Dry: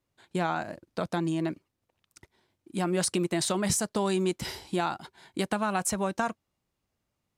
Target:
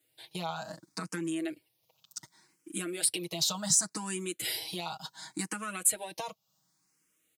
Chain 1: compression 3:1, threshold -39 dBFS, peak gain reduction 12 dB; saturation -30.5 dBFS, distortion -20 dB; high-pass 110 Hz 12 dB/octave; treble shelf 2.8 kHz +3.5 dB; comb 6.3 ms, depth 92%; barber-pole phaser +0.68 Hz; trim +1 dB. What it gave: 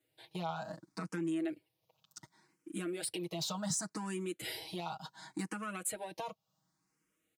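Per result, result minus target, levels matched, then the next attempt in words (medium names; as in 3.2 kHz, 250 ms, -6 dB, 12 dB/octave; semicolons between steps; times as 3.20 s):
saturation: distortion +14 dB; 2 kHz band +2.5 dB
compression 3:1, threshold -39 dBFS, peak gain reduction 12 dB; saturation -22 dBFS, distortion -34 dB; high-pass 110 Hz 12 dB/octave; treble shelf 2.8 kHz +3.5 dB; comb 6.3 ms, depth 92%; barber-pole phaser +0.68 Hz; trim +1 dB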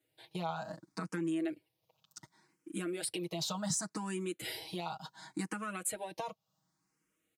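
2 kHz band +2.5 dB
compression 3:1, threshold -39 dBFS, peak gain reduction 12 dB; saturation -22 dBFS, distortion -34 dB; high-pass 110 Hz 12 dB/octave; treble shelf 2.8 kHz +15.5 dB; comb 6.3 ms, depth 92%; barber-pole phaser +0.68 Hz; trim +1 dB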